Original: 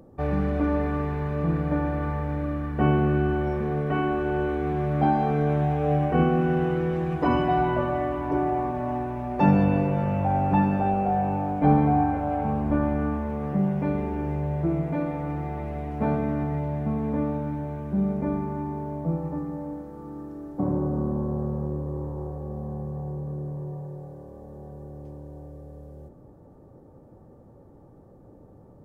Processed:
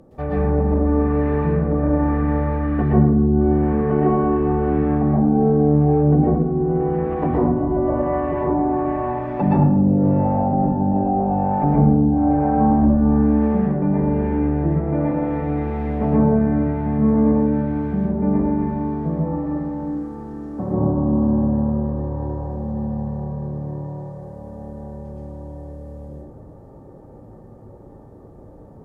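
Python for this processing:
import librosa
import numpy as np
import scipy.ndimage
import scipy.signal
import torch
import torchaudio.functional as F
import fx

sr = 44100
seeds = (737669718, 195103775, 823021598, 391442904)

y = fx.env_lowpass_down(x, sr, base_hz=310.0, full_db=-18.0)
y = fx.rev_plate(y, sr, seeds[0], rt60_s=0.82, hf_ratio=0.6, predelay_ms=105, drr_db=-6.0)
y = F.gain(torch.from_numpy(y), 1.0).numpy()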